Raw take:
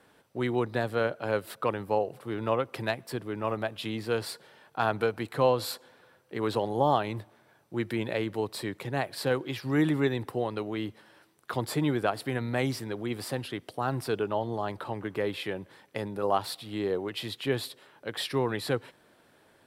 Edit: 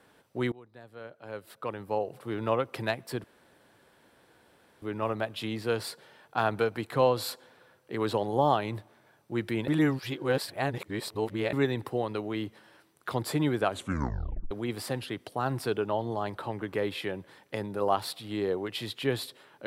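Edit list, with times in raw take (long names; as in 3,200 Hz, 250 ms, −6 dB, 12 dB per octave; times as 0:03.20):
0:00.52–0:02.27: fade in quadratic, from −23.5 dB
0:03.24: splice in room tone 1.58 s
0:08.10–0:09.95: reverse
0:12.07: tape stop 0.86 s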